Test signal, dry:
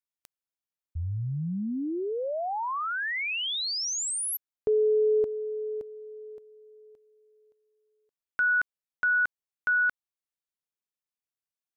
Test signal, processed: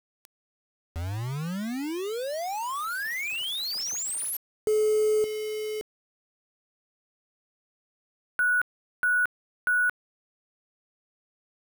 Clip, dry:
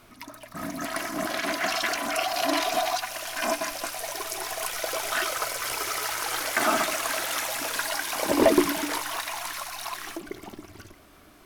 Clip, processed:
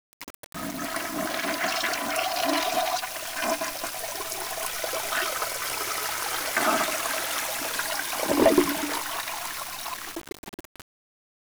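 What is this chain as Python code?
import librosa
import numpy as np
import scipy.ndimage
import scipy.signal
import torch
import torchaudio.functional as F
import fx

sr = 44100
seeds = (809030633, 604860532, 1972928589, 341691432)

y = fx.quant_dither(x, sr, seeds[0], bits=6, dither='none')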